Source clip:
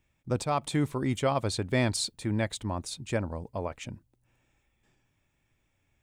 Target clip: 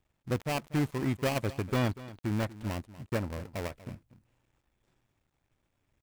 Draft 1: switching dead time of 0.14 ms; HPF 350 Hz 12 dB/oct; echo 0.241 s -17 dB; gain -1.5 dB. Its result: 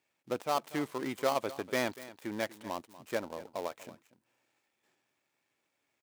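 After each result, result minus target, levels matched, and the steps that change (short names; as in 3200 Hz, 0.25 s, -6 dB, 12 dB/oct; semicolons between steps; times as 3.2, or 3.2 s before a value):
250 Hz band -3.0 dB; switching dead time: distortion -4 dB
remove: HPF 350 Hz 12 dB/oct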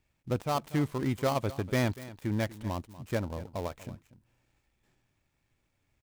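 switching dead time: distortion -4 dB
change: switching dead time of 0.33 ms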